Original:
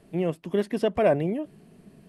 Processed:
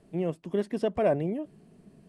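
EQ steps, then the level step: LPF 10000 Hz 24 dB/oct; bell 2500 Hz -4 dB 2.2 oct; -3.0 dB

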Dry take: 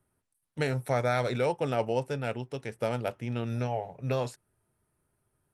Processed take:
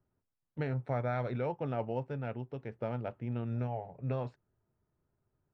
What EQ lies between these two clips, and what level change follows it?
dynamic EQ 460 Hz, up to -4 dB, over -37 dBFS, Q 1.4; tape spacing loss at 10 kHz 42 dB; -2.0 dB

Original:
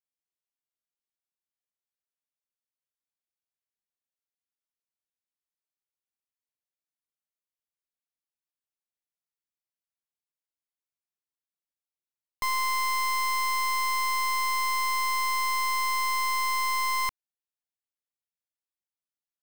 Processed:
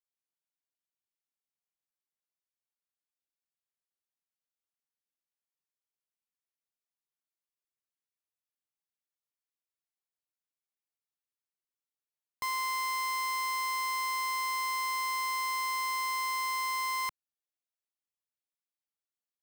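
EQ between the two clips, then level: HPF 140 Hz 6 dB/oct; -5.0 dB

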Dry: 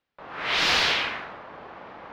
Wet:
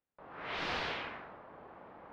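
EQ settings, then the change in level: LPF 1000 Hz 6 dB/oct; -8.0 dB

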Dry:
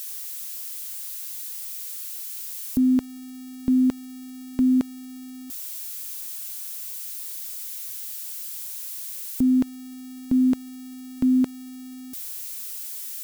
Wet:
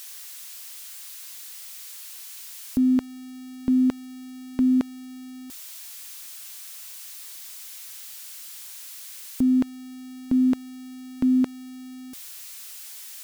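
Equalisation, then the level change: LPF 3800 Hz 6 dB/oct; low shelf 380 Hz -6 dB; +3.5 dB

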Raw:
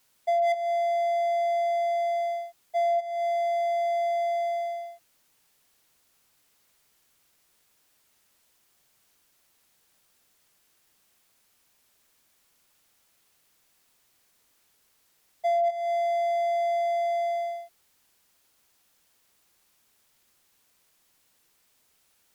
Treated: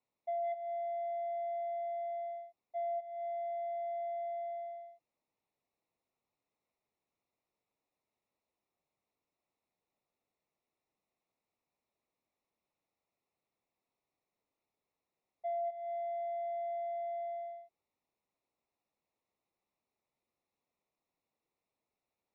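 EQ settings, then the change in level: running mean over 28 samples; air absorption 95 m; tilt +2.5 dB/oct; -7.5 dB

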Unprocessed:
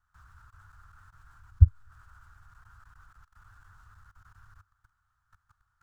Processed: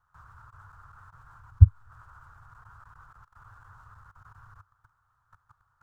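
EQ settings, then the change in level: graphic EQ 125/500/1000 Hz +10/+11/+11 dB; -2.5 dB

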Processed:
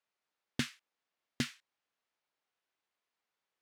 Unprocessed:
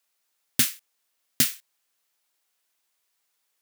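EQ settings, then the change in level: tape spacing loss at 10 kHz 24 dB; -3.0 dB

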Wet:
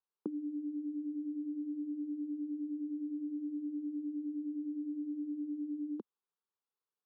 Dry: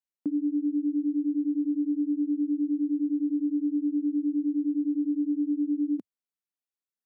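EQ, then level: HPF 310 Hz; air absorption 340 m; fixed phaser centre 420 Hz, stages 8; +8.0 dB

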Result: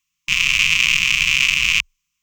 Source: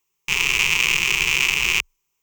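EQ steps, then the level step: brick-wall FIR band-stop 310–1000 Hz; low shelf 380 Hz +10 dB; bell 3600 Hz +12 dB 2.6 oct; -7.5 dB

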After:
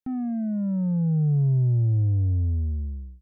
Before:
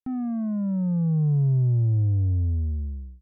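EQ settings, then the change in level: Butterworth band-stop 1100 Hz, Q 3.7; 0.0 dB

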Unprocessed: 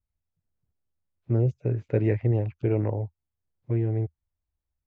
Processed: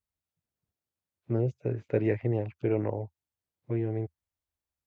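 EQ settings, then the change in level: HPF 230 Hz 6 dB/oct; 0.0 dB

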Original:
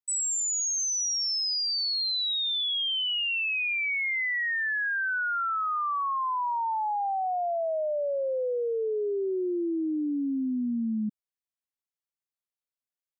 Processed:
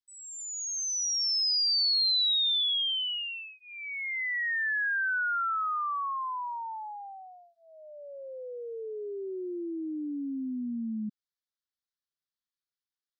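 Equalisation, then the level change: air absorption 92 m; high shelf 2200 Hz +12 dB; fixed phaser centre 2500 Hz, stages 6; -3.5 dB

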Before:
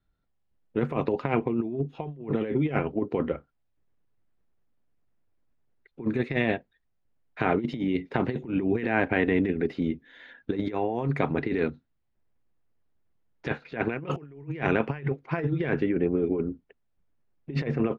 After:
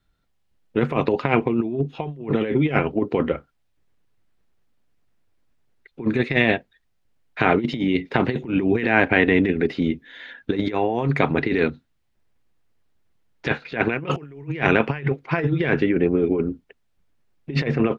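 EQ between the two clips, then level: bell 3700 Hz +6 dB 2.5 oct; +5.5 dB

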